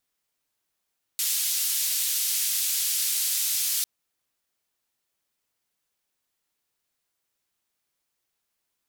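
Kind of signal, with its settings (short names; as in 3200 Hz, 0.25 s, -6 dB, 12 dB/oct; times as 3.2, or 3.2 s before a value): noise band 3600–16000 Hz, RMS -26 dBFS 2.65 s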